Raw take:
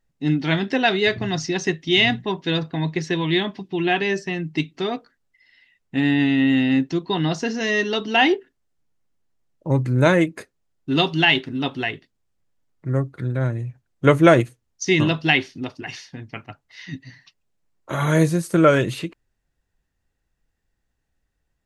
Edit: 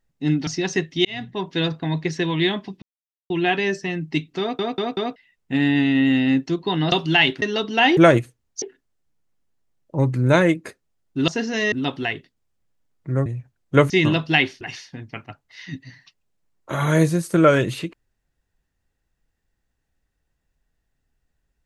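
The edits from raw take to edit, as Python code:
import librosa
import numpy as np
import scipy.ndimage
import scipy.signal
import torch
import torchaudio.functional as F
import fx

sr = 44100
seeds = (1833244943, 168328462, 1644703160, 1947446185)

y = fx.edit(x, sr, fx.cut(start_s=0.47, length_s=0.91),
    fx.fade_in_span(start_s=1.96, length_s=0.45),
    fx.insert_silence(at_s=3.73, length_s=0.48),
    fx.stutter_over(start_s=4.83, slice_s=0.19, count=4),
    fx.swap(start_s=7.35, length_s=0.44, other_s=11.0, other_length_s=0.5),
    fx.cut(start_s=13.04, length_s=0.52),
    fx.move(start_s=14.2, length_s=0.65, to_s=8.34),
    fx.cut(start_s=15.56, length_s=0.25), tone=tone)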